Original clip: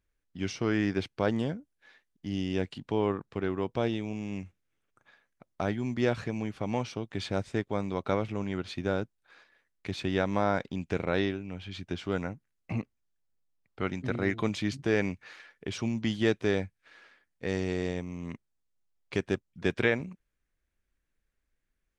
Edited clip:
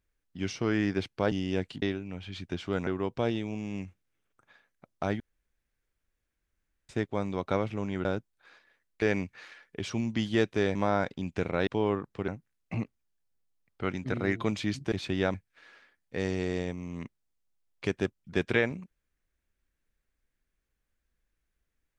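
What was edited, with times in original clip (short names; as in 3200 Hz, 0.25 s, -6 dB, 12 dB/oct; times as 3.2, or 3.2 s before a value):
1.32–2.34 cut
2.84–3.45 swap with 11.21–12.26
5.78–7.47 room tone
8.63–8.9 cut
9.87–10.29 swap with 14.9–16.63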